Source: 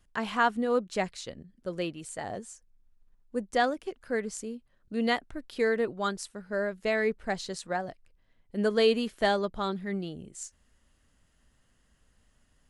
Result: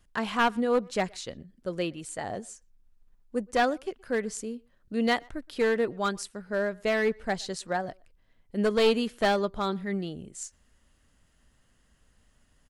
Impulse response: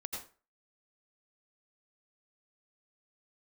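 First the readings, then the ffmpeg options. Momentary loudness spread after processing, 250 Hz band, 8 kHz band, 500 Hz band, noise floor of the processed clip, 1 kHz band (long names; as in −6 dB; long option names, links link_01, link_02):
14 LU, +2.0 dB, +2.0 dB, +1.5 dB, −66 dBFS, +1.5 dB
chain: -filter_complex "[0:a]aeval=exprs='clip(val(0),-1,0.0708)':channel_layout=same,asplit=2[link_01][link_02];[link_02]adelay=120,highpass=300,lowpass=3400,asoftclip=type=hard:threshold=-21.5dB,volume=-26dB[link_03];[link_01][link_03]amix=inputs=2:normalize=0,volume=2dB"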